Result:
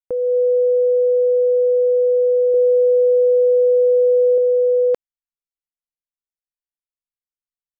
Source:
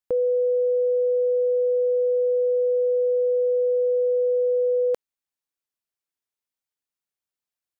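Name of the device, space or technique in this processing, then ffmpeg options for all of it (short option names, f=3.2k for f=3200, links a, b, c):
voice memo with heavy noise removal: -filter_complex "[0:a]asettb=1/sr,asplit=3[a][b][c];[a]atrim=end=2.544[d];[b]atrim=start=2.54:end=4.38,asetpts=PTS-STARTPTS,afade=t=in:d=0.004:c=qsin,afade=t=out:st=1.836:d=0.004:c=qsin,aemphasis=mode=reproduction:type=bsi[e];[c]atrim=start=4.376[f];[d][e]acrossfade=d=0.004:c1=hsin:c2=qsin[g];[g][f]acrossfade=d=0.004:c1=qsin:c2=hsin,anlmdn=63.1,dynaudnorm=f=190:g=3:m=6dB"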